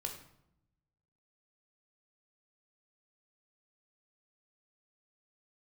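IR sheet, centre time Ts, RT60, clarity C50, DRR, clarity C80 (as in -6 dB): 21 ms, 0.75 s, 7.5 dB, 2.5 dB, 10.5 dB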